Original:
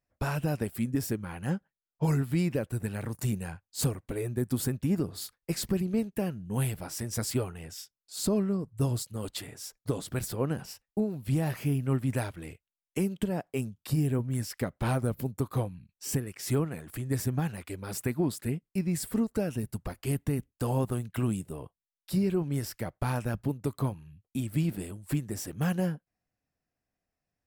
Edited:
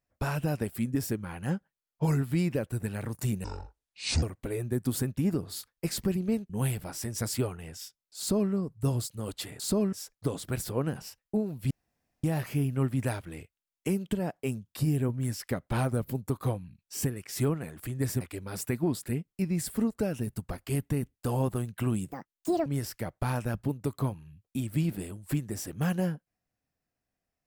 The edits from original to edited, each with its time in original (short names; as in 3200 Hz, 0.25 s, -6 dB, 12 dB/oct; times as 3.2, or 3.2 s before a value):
3.44–3.88 speed 56%
6.15–6.46 cut
8.15–8.48 copy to 9.56
11.34 insert room tone 0.53 s
17.31–17.57 cut
21.48–22.46 speed 180%